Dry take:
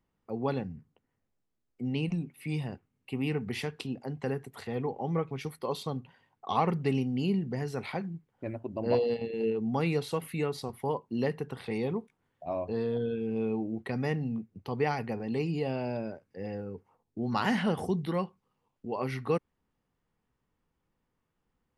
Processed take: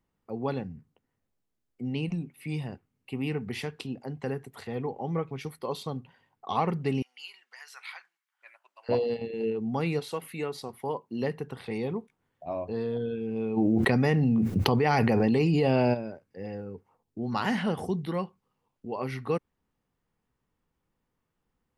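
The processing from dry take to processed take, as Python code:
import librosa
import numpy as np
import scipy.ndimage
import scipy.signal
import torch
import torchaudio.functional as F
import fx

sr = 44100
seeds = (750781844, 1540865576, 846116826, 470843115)

y = fx.highpass(x, sr, hz=1200.0, slope=24, at=(7.02, 8.89))
y = fx.highpass(y, sr, hz=fx.line((9.99, 360.0), (11.21, 150.0)), slope=6, at=(9.99, 11.21), fade=0.02)
y = fx.env_flatten(y, sr, amount_pct=100, at=(13.56, 15.93), fade=0.02)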